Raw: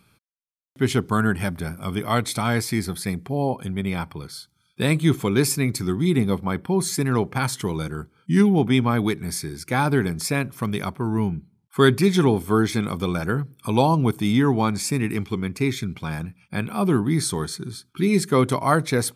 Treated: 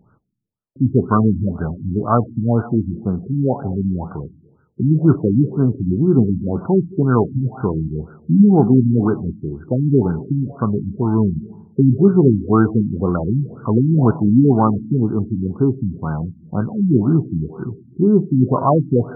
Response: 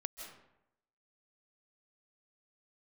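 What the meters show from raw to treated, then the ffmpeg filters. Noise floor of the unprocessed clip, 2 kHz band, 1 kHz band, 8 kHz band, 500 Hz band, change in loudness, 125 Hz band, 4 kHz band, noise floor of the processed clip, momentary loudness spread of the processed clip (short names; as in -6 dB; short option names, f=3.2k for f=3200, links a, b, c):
-67 dBFS, -10.5 dB, +1.5 dB, under -40 dB, +4.0 dB, +5.0 dB, +6.5 dB, under -40 dB, -54 dBFS, 11 LU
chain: -filter_complex "[0:a]flanger=delay=7.7:depth=1.2:regen=-80:speed=1.1:shape=sinusoidal,asplit=2[a][b];[1:a]atrim=start_sample=2205,asetrate=48510,aresample=44100[c];[b][c]afir=irnorm=-1:irlink=0,volume=-6dB[d];[a][d]amix=inputs=2:normalize=0,afftfilt=real='re*lt(b*sr/1024,310*pow(1600/310,0.5+0.5*sin(2*PI*2*pts/sr)))':imag='im*lt(b*sr/1024,310*pow(1600/310,0.5+0.5*sin(2*PI*2*pts/sr)))':win_size=1024:overlap=0.75,volume=8.5dB"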